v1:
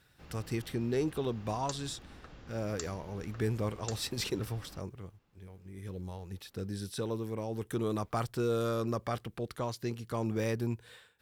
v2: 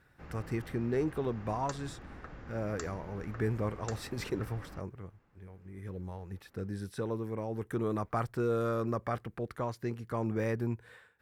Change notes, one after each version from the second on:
background +4.0 dB; master: add resonant high shelf 2.5 kHz -8 dB, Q 1.5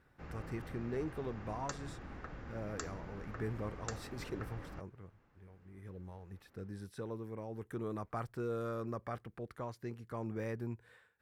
speech -7.5 dB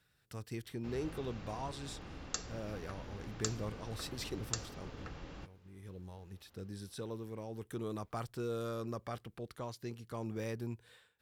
background: entry +0.65 s; master: add resonant high shelf 2.5 kHz +8 dB, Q 1.5

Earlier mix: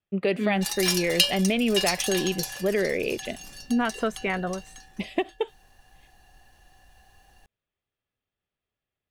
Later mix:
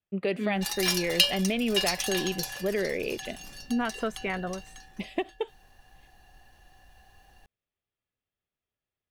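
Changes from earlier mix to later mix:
speech -4.0 dB; background: add peaking EQ 8.3 kHz -4.5 dB 1.1 oct

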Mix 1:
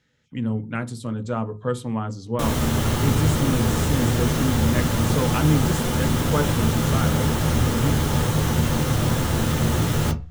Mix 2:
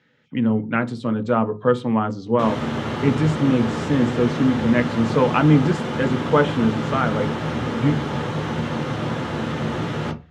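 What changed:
speech +8.0 dB; master: add band-pass 170–3000 Hz

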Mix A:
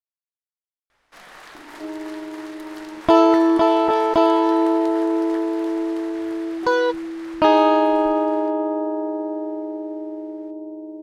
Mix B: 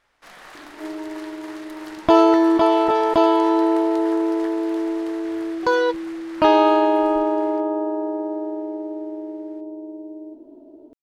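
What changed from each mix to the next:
first sound: entry -0.90 s; second sound: entry -1.00 s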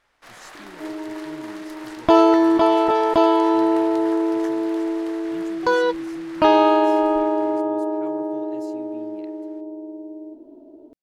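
speech: unmuted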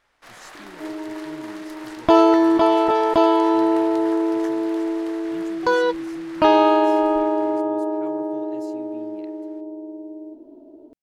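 no change

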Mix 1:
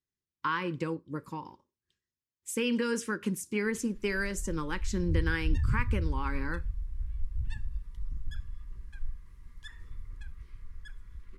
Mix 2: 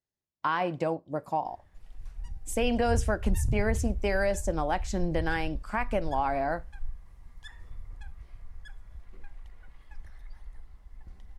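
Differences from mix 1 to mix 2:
background: entry -2.20 s; master: remove Butterworth band-stop 690 Hz, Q 1.2

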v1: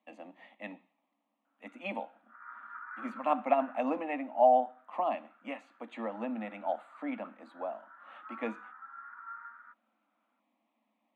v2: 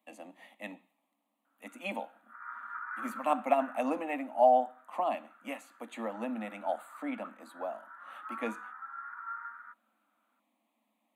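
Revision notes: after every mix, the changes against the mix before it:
speech: remove low-pass 3.2 kHz 12 dB/octave; background +4.5 dB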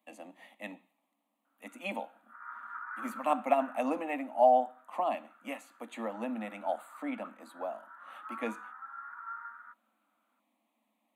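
background: add tilt EQ -3.5 dB/octave

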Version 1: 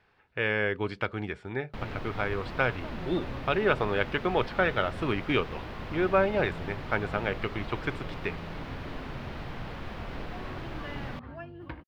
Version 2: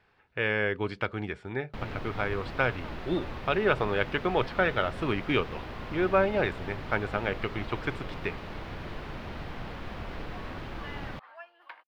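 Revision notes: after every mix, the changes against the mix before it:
second sound: add high-pass 750 Hz 24 dB/octave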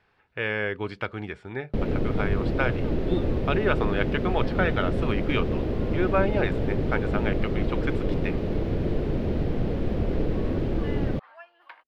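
first sound: add resonant low shelf 680 Hz +13.5 dB, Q 1.5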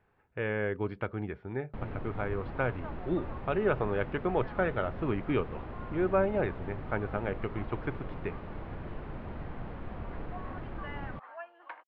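first sound: add resonant low shelf 680 Hz -13.5 dB, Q 1.5; second sound +8.0 dB; master: add tape spacing loss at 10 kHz 45 dB

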